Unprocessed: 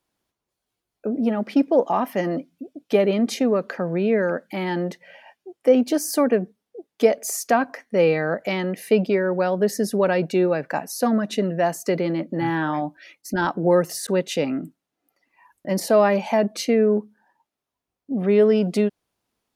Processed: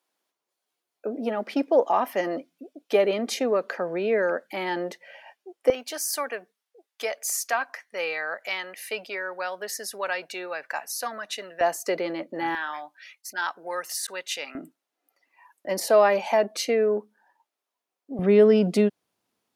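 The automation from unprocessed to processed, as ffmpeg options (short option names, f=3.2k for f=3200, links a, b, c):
-af "asetnsamples=n=441:p=0,asendcmd='5.7 highpass f 1100;11.61 highpass f 490;12.55 highpass f 1300;14.55 highpass f 430;18.19 highpass f 130',highpass=410"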